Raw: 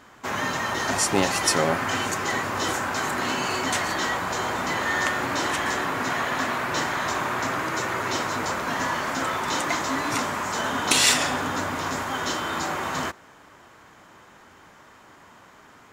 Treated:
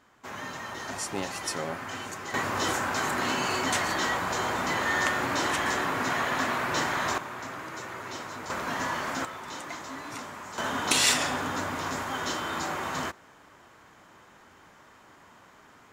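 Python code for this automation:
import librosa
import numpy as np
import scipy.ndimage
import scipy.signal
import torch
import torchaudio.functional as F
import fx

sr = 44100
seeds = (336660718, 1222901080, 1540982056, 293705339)

y = fx.gain(x, sr, db=fx.steps((0.0, -11.0), (2.34, -2.0), (7.18, -11.5), (8.5, -4.5), (9.25, -13.0), (10.58, -4.0)))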